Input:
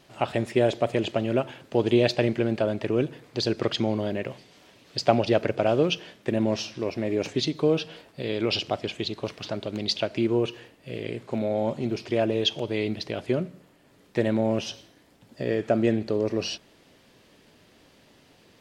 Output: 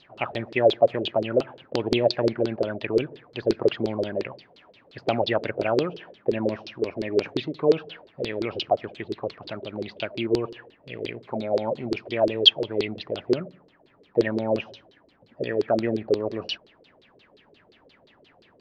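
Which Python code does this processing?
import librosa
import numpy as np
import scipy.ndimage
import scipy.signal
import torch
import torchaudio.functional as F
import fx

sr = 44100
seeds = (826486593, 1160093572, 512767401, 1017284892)

y = fx.high_shelf(x, sr, hz=5100.0, db=6.5, at=(10.93, 12.57))
y = fx.filter_lfo_lowpass(y, sr, shape='saw_down', hz=5.7, low_hz=350.0, high_hz=4600.0, q=6.8)
y = y * librosa.db_to_amplitude(-5.0)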